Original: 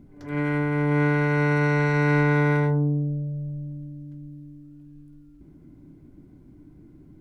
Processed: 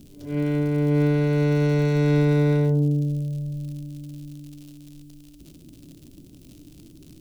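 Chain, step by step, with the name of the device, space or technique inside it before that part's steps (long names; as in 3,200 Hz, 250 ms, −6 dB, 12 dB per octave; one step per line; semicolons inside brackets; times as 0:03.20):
record under a worn stylus (stylus tracing distortion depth 0.021 ms; surface crackle 120 per second −37 dBFS; white noise bed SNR 42 dB)
flat-topped bell 1,300 Hz −12.5 dB
level +2 dB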